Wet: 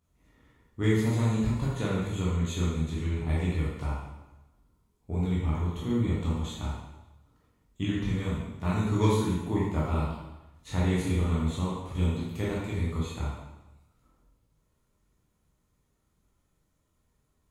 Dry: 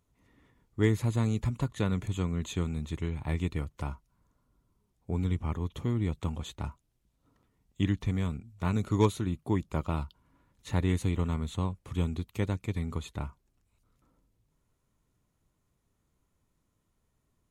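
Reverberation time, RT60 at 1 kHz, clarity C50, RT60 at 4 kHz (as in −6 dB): 1.0 s, 1.0 s, −0.5 dB, 0.95 s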